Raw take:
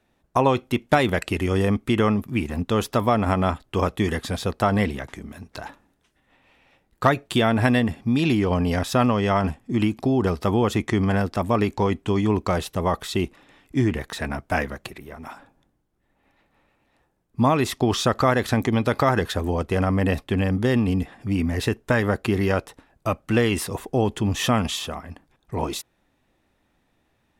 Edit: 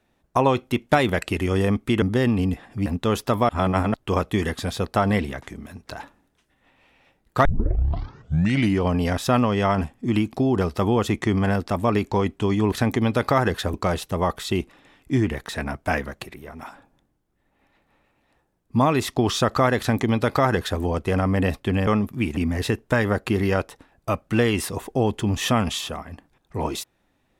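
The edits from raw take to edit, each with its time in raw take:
0:02.02–0:02.52: swap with 0:20.51–0:21.35
0:03.15–0:03.60: reverse
0:07.11: tape start 1.36 s
0:18.43–0:19.45: duplicate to 0:12.38

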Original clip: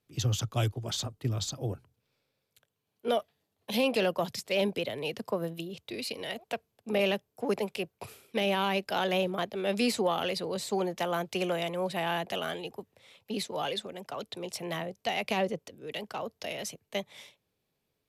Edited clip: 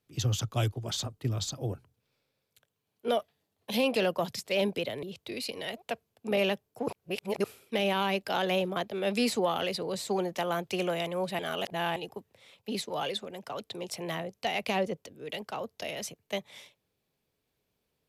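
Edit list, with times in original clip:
0:05.03–0:05.65: remove
0:07.50–0:08.06: reverse
0:12.01–0:12.58: reverse

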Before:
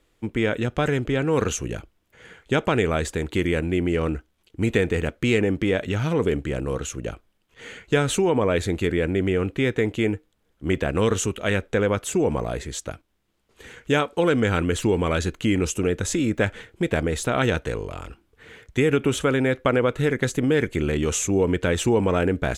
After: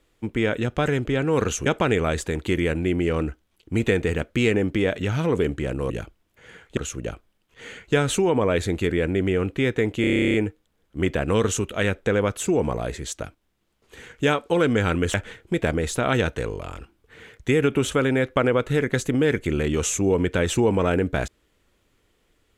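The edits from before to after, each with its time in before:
0:01.66–0:02.53: move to 0:06.77
0:10.01: stutter 0.03 s, 12 plays
0:14.81–0:16.43: remove

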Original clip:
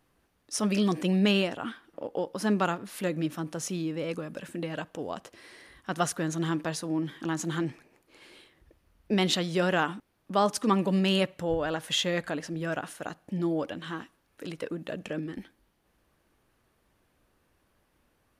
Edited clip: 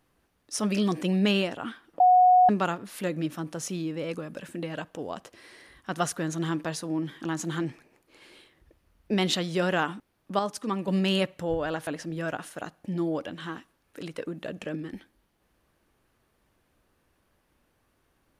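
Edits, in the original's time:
0:02.00–0:02.49: beep over 731 Hz −14 dBFS
0:10.39–0:10.88: clip gain −5.5 dB
0:11.87–0:12.31: remove

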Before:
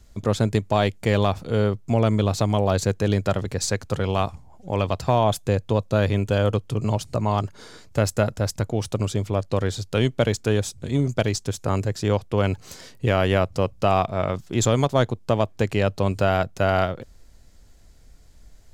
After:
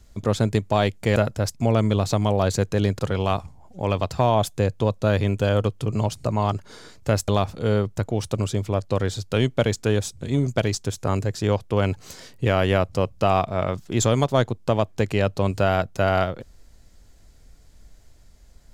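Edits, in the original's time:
0:01.16–0:01.84: swap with 0:08.17–0:08.57
0:03.27–0:03.88: remove

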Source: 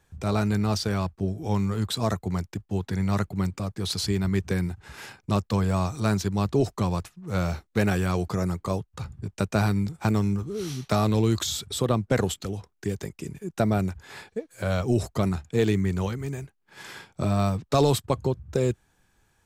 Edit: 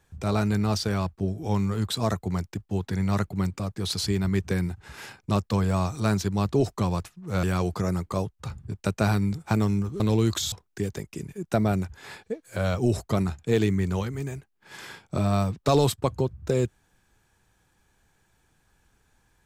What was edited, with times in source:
0:07.43–0:07.97: remove
0:10.54–0:11.05: remove
0:11.57–0:12.58: remove

